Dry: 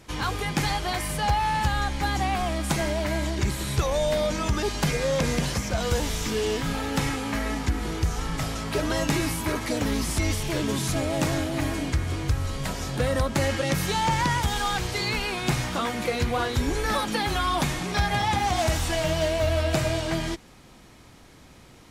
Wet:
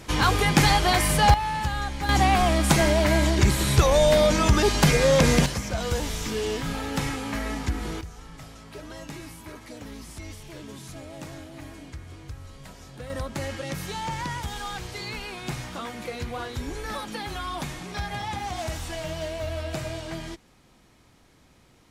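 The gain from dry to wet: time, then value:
+7 dB
from 1.34 s -3 dB
from 2.09 s +6 dB
from 5.46 s -2 dB
from 8.01 s -14.5 dB
from 13.1 s -7.5 dB

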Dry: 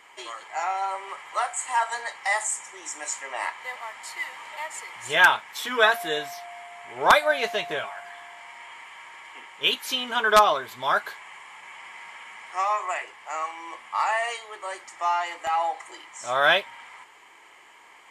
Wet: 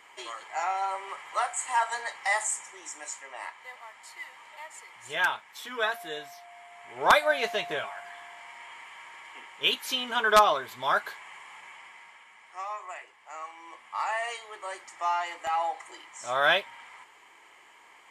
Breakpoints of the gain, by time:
2.49 s -2 dB
3.37 s -9.5 dB
6.42 s -9.5 dB
7.18 s -2.5 dB
11.58 s -2.5 dB
12.28 s -11.5 dB
13.16 s -11.5 dB
14.47 s -3.5 dB

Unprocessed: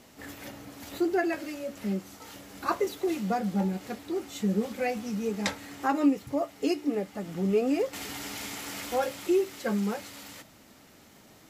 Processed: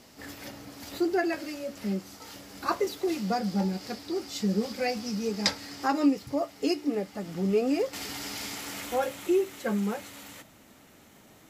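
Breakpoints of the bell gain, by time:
bell 4900 Hz 0.42 oct
3.01 s +6.5 dB
3.5 s +14.5 dB
5.83 s +14.5 dB
6.58 s +6 dB
8.49 s +6 dB
8.97 s -4.5 dB

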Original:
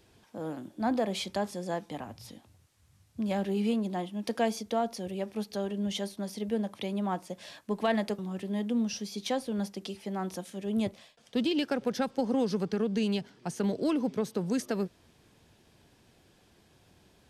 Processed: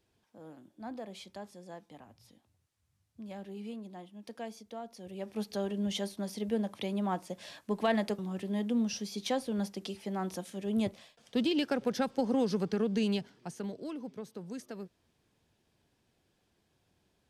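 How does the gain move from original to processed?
4.88 s -13.5 dB
5.42 s -1 dB
13.13 s -1 dB
13.84 s -12 dB

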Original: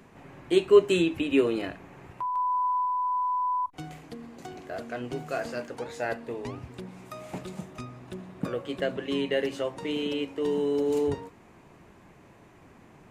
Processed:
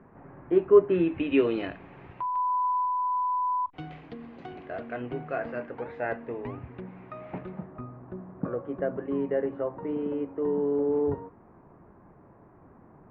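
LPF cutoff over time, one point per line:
LPF 24 dB/oct
0.84 s 1600 Hz
1.45 s 3400 Hz
4.36 s 3400 Hz
5.28 s 2300 Hz
7.37 s 2300 Hz
7.81 s 1400 Hz

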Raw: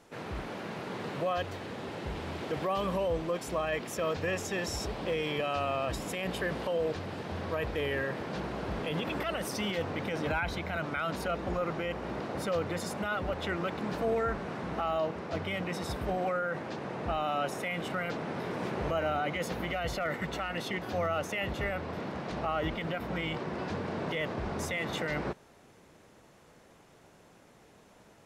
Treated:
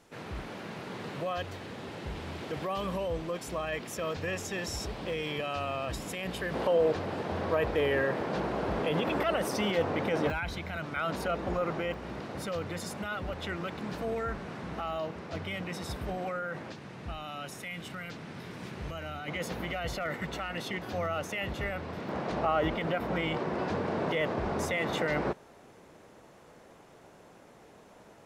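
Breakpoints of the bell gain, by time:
bell 610 Hz 2.9 oct
-3 dB
from 6.54 s +6 dB
from 10.3 s -4.5 dB
from 10.96 s +1.5 dB
from 11.94 s -4.5 dB
from 16.72 s -12 dB
from 19.28 s -2 dB
from 22.09 s +5 dB

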